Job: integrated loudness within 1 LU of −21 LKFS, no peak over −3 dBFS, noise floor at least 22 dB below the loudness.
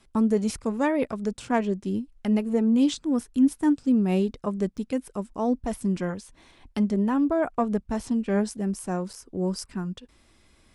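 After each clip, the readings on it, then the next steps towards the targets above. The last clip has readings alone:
number of dropouts 2; longest dropout 6.2 ms; integrated loudness −26.0 LKFS; sample peak −10.0 dBFS; target loudness −21.0 LKFS
→ repair the gap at 0:04.77/0:09.13, 6.2 ms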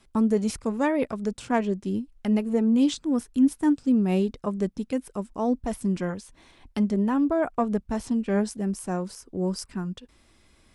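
number of dropouts 0; integrated loudness −26.0 LKFS; sample peak −10.0 dBFS; target loudness −21.0 LKFS
→ level +5 dB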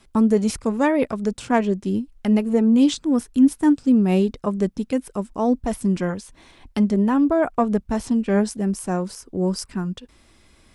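integrated loudness −21.0 LKFS; sample peak −5.0 dBFS; background noise floor −56 dBFS

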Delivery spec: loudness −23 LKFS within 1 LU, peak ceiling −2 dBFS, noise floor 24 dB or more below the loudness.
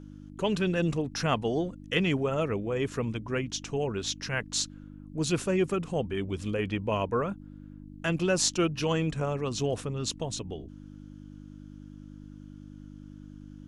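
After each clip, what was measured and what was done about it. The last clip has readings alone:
mains hum 50 Hz; hum harmonics up to 300 Hz; level of the hum −43 dBFS; integrated loudness −30.0 LKFS; sample peak −10.0 dBFS; target loudness −23.0 LKFS
→ hum removal 50 Hz, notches 6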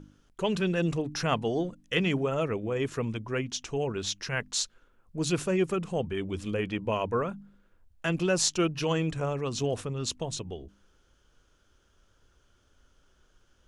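mains hum none found; integrated loudness −30.0 LKFS; sample peak −9.5 dBFS; target loudness −23.0 LKFS
→ level +7 dB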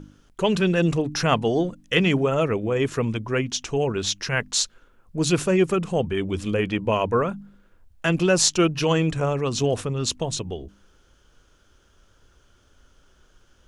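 integrated loudness −23.0 LKFS; sample peak −2.5 dBFS; background noise floor −60 dBFS

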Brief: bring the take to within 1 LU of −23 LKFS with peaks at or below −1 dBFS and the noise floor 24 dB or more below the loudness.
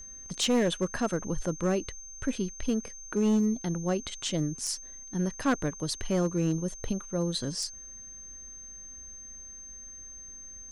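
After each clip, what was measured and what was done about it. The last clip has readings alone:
share of clipped samples 0.9%; peaks flattened at −20.0 dBFS; interfering tone 6,300 Hz; level of the tone −43 dBFS; integrated loudness −30.5 LKFS; sample peak −20.0 dBFS; target loudness −23.0 LKFS
→ clipped peaks rebuilt −20 dBFS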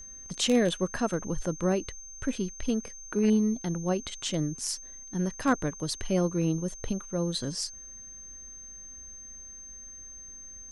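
share of clipped samples 0.0%; interfering tone 6,300 Hz; level of the tone −43 dBFS
→ notch filter 6,300 Hz, Q 30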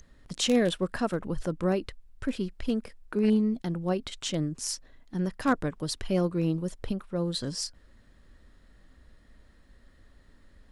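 interfering tone none found; integrated loudness −30.0 LKFS; sample peak −11.5 dBFS; target loudness −23.0 LKFS
→ level +7 dB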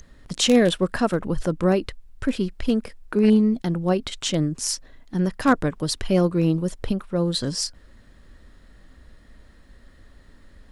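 integrated loudness −23.0 LKFS; sample peak −4.5 dBFS; background noise floor −52 dBFS

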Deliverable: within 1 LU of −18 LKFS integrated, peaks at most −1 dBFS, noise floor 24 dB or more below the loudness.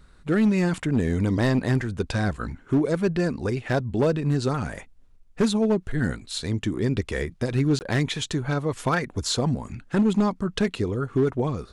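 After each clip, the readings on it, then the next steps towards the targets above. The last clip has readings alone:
share of clipped samples 1.5%; peaks flattened at −15.0 dBFS; number of dropouts 1; longest dropout 19 ms; integrated loudness −25.0 LKFS; sample peak −15.0 dBFS; target loudness −18.0 LKFS
→ clipped peaks rebuilt −15 dBFS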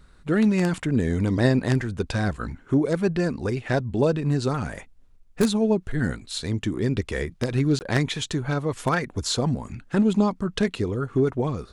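share of clipped samples 0.0%; number of dropouts 1; longest dropout 19 ms
→ repair the gap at 0:07.79, 19 ms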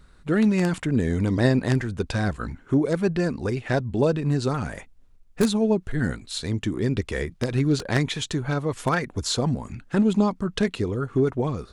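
number of dropouts 0; integrated loudness −24.5 LKFS; sample peak −6.0 dBFS; target loudness −18.0 LKFS
→ level +6.5 dB
brickwall limiter −1 dBFS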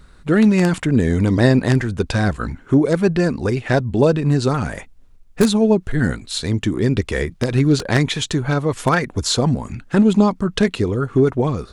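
integrated loudness −18.0 LKFS; sample peak −1.0 dBFS; background noise floor −46 dBFS

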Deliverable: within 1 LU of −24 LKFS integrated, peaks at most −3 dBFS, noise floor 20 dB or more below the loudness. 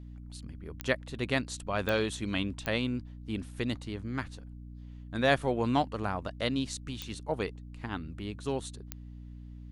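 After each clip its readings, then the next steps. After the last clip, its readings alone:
number of clicks 5; mains hum 60 Hz; hum harmonics up to 300 Hz; level of the hum −43 dBFS; integrated loudness −33.0 LKFS; sample peak −10.5 dBFS; target loudness −24.0 LKFS
→ click removal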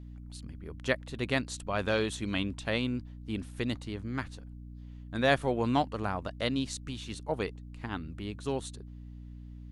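number of clicks 0; mains hum 60 Hz; hum harmonics up to 300 Hz; level of the hum −43 dBFS
→ mains-hum notches 60/120/180/240/300 Hz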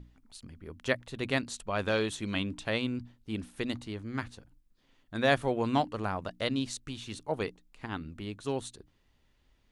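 mains hum none found; integrated loudness −33.5 LKFS; sample peak −11.0 dBFS; target loudness −24.0 LKFS
→ level +9.5 dB
brickwall limiter −3 dBFS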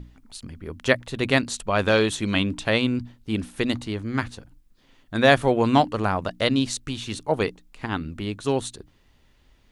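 integrated loudness −24.0 LKFS; sample peak −3.0 dBFS; background noise floor −60 dBFS

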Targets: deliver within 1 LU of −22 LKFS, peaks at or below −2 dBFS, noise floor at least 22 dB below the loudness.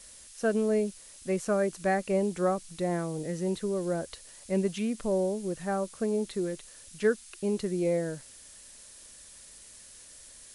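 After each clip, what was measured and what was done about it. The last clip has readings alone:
background noise floor −51 dBFS; target noise floor −53 dBFS; integrated loudness −30.5 LKFS; sample peak −15.0 dBFS; target loudness −22.0 LKFS
→ broadband denoise 6 dB, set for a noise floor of −51 dBFS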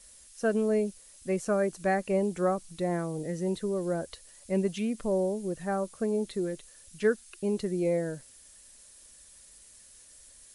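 background noise floor −55 dBFS; integrated loudness −30.5 LKFS; sample peak −15.0 dBFS; target loudness −22.0 LKFS
→ level +8.5 dB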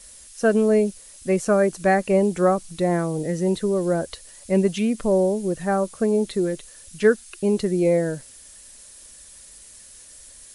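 integrated loudness −22.0 LKFS; sample peak −6.5 dBFS; background noise floor −46 dBFS

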